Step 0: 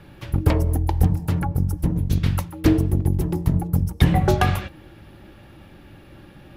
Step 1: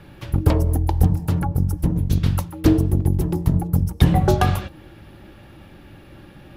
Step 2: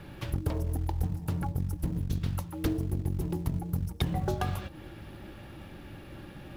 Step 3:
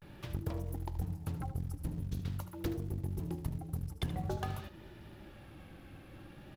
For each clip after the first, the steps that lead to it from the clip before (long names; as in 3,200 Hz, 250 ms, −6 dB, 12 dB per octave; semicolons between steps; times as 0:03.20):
dynamic equaliser 2,100 Hz, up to −6 dB, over −45 dBFS, Q 1.6; level +1.5 dB
in parallel at −8 dB: floating-point word with a short mantissa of 2 bits; on the sum: downward compressor 3 to 1, threshold −26 dBFS, peak gain reduction 15 dB; level −4.5 dB
pitch vibrato 0.47 Hz 89 cents; single-tap delay 76 ms −12.5 dB; level −7 dB